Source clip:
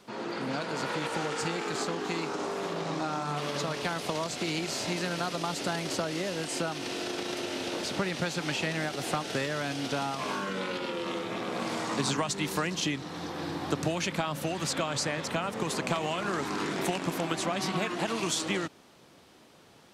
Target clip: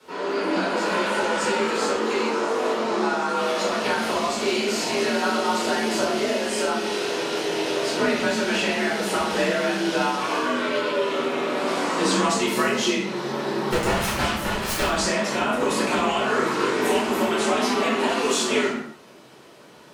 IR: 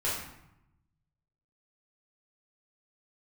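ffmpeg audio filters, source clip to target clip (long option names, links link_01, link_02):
-filter_complex "[0:a]afreqshift=54,asettb=1/sr,asplit=3[link_01][link_02][link_03];[link_01]atrim=end=13.694[link_04];[link_02]atrim=start=13.69:end=14.83,asetpts=PTS-STARTPTS,afade=type=in:duration=0.004:curve=qsin,afade=type=out:start_time=1.136:duration=0.004:curve=qsin,aeval=exprs='0.158*(cos(1*acos(clip(val(0)/0.158,-1,1)))-cos(1*PI/2))+0.0501*(cos(7*acos(clip(val(0)/0.158,-1,1)))-cos(7*PI/2))':channel_layout=same[link_05];[link_03]atrim=start=14.826[link_06];[link_04][link_05]acrossfade=duration=0.004:curve1=hsin:curve2=qsin[link_07];[link_07][link_06]acrossfade=duration=0.004:curve1=qsin:curve2=hsin[link_08];[1:a]atrim=start_sample=2205,afade=type=out:start_time=0.35:duration=0.01,atrim=end_sample=15876[link_09];[link_08][link_09]afir=irnorm=-1:irlink=0,volume=1dB"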